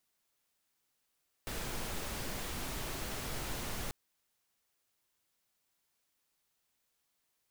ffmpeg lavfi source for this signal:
-f lavfi -i "anoisesrc=c=pink:a=0.0575:d=2.44:r=44100:seed=1"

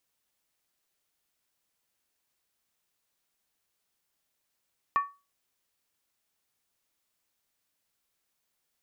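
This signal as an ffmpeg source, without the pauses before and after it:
-f lavfi -i "aevalsrc='0.119*pow(10,-3*t/0.28)*sin(2*PI*1130*t)+0.0316*pow(10,-3*t/0.222)*sin(2*PI*1801.2*t)+0.00841*pow(10,-3*t/0.192)*sin(2*PI*2413.7*t)+0.00224*pow(10,-3*t/0.185)*sin(2*PI*2594.5*t)+0.000596*pow(10,-3*t/0.172)*sin(2*PI*2997.9*t)':d=0.63:s=44100"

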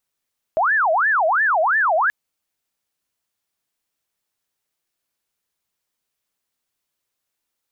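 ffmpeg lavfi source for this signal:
-f lavfi -i "aevalsrc='0.188*sin(2*PI*(1203*t-577/(2*PI*2.9)*sin(2*PI*2.9*t)))':d=1.53:s=44100"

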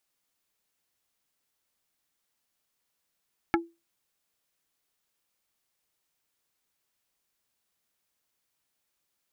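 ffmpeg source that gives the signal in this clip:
-f lavfi -i "aevalsrc='0.112*pow(10,-3*t/0.25)*sin(2*PI*336*t)+0.1*pow(10,-3*t/0.083)*sin(2*PI*840*t)+0.0891*pow(10,-3*t/0.047)*sin(2*PI*1344*t)+0.0794*pow(10,-3*t/0.036)*sin(2*PI*1680*t)+0.0708*pow(10,-3*t/0.026)*sin(2*PI*2184*t)':d=0.45:s=44100"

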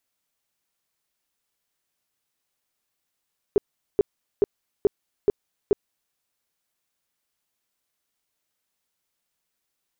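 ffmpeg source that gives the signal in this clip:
-f lavfi -i "aevalsrc='0.224*sin(2*PI*407*mod(t,0.43))*lt(mod(t,0.43),8/407)':d=2.58:s=44100"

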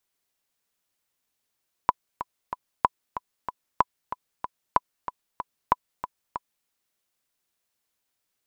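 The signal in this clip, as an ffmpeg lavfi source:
-f lavfi -i "aevalsrc='pow(10,(-4.5-12*gte(mod(t,3*60/188),60/188))/20)*sin(2*PI*996*mod(t,60/188))*exp(-6.91*mod(t,60/188)/0.03)':d=4.78:s=44100"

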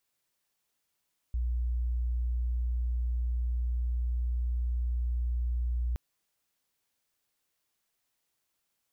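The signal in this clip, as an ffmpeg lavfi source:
-f lavfi -i "sine=f=60.1:d=4.62:r=44100,volume=-8.94dB"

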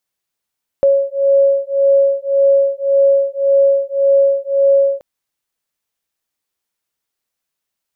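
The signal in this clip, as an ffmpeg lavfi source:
-f lavfi -i "aevalsrc='0.224*(sin(2*PI*552*t)+sin(2*PI*553.8*t))':d=4.18:s=44100"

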